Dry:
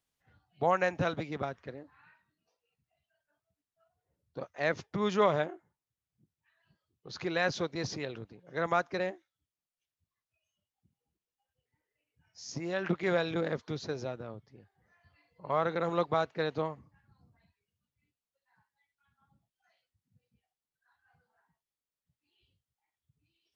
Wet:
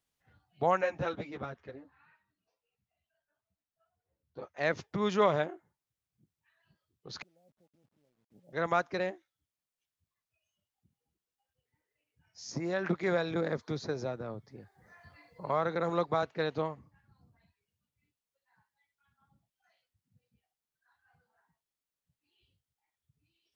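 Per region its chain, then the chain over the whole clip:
0.81–4.57 high shelf 5900 Hz -7.5 dB + ensemble effect
7.22–8.53 flipped gate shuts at -34 dBFS, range -30 dB + rippled Chebyshev low-pass 850 Hz, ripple 9 dB + companded quantiser 8-bit
12.5–16.23 bell 2900 Hz -8.5 dB 0.38 oct + three-band squash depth 40%
whole clip: dry

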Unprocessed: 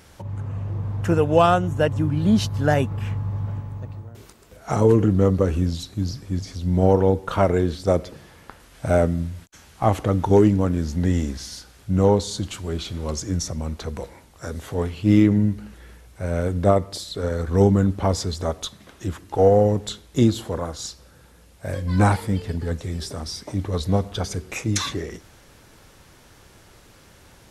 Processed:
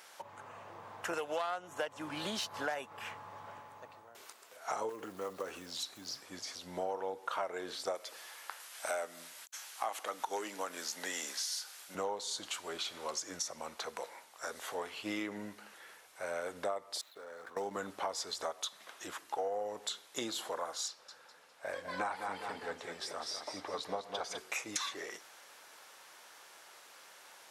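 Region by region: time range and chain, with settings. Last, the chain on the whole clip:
1.13–2.75 self-modulated delay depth 0.091 ms + three-band squash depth 70%
4.89–6.24 block floating point 7-bit + compressor 2:1, threshold -25 dBFS
7.95–11.95 HPF 170 Hz + tilt +2.5 dB/oct
17.01–17.77 median filter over 9 samples + HPF 100 Hz + level quantiser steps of 19 dB
20.88–24.38 LPF 3300 Hz 6 dB/oct + feedback echo 0.203 s, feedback 36%, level -7.5 dB
whole clip: Chebyshev high-pass 820 Hz, order 2; compressor 5:1, threshold -33 dBFS; gain -1.5 dB

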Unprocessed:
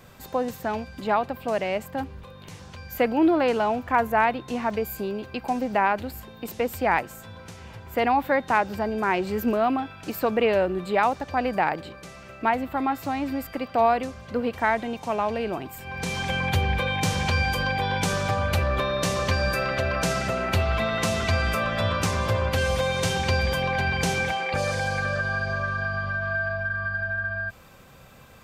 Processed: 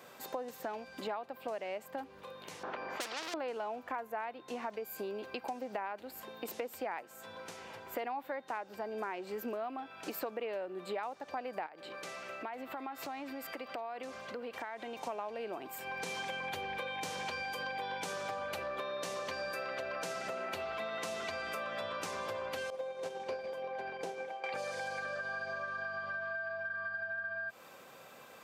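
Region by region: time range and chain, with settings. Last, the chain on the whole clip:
2.63–3.34 low-pass opened by the level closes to 500 Hz, open at -16 dBFS + overdrive pedal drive 23 dB, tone 6400 Hz, clips at -10.5 dBFS + spectral compressor 4:1
11.66–14.97 bell 2400 Hz +3.5 dB 2.9 oct + compressor 5:1, threshold -35 dBFS
22.7–24.44 expander -14 dBFS + bell 470 Hz +13.5 dB 2.1 oct + Doppler distortion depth 0.11 ms
whole clip: HPF 430 Hz 12 dB/oct; tilt shelf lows +3 dB, about 640 Hz; compressor, threshold -37 dBFS

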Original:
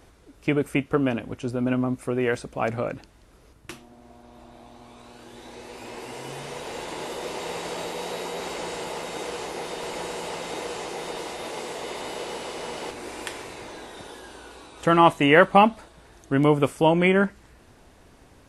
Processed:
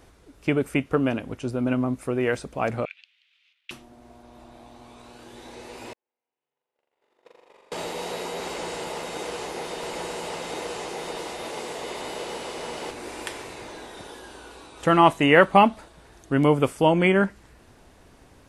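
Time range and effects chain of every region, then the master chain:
2.85–3.71 tilt +4.5 dB/oct + backlash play -50 dBFS + Butterworth band-pass 2800 Hz, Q 2.1
5.93–7.72 gate -29 dBFS, range -56 dB + tone controls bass -13 dB, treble -11 dB + flutter echo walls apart 7.2 m, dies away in 1.4 s
whole clip: dry

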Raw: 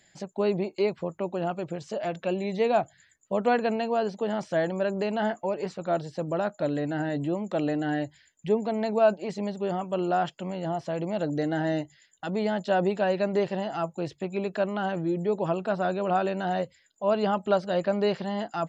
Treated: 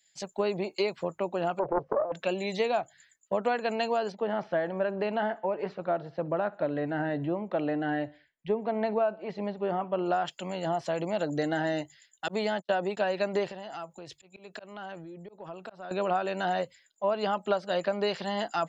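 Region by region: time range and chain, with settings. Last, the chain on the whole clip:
1.59–2.12 negative-ratio compressor -35 dBFS + synth low-pass 560 Hz, resonance Q 6.2 + Doppler distortion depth 0.74 ms
4.12–10.06 air absorption 280 m + feedback echo 64 ms, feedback 46%, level -22.5 dB
12.28–12.97 gate -31 dBFS, range -45 dB + HPF 110 Hz
13.51–15.91 auto swell 0.269 s + compressor 8:1, threshold -35 dBFS
whole clip: low shelf 390 Hz -10 dB; compressor 10:1, threshold -31 dBFS; three-band expander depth 70%; gain +6.5 dB

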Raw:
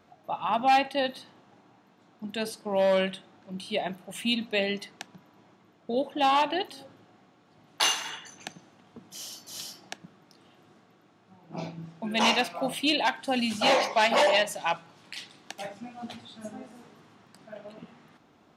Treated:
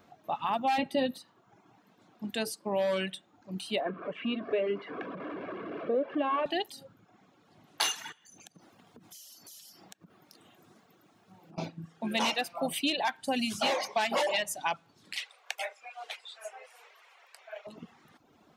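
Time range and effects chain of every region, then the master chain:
0.78–1.18 low shelf 460 Hz +12 dB + doubler 12 ms -6 dB
3.8–6.46 zero-crossing step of -30 dBFS + speaker cabinet 270–2100 Hz, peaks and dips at 280 Hz +9 dB, 400 Hz +5 dB, 880 Hz -9 dB, 1900 Hz -7 dB + comb 1.8 ms, depth 40%
8.12–11.58 high shelf 8400 Hz +9 dB + notches 60/120 Hz + compressor 8:1, threshold -49 dBFS
15.17–17.67 steep high-pass 480 Hz 48 dB/oct + bell 2300 Hz +10 dB 0.73 oct
whole clip: reverb removal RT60 0.77 s; high shelf 11000 Hz +8.5 dB; compressor 4:1, threshold -26 dBFS

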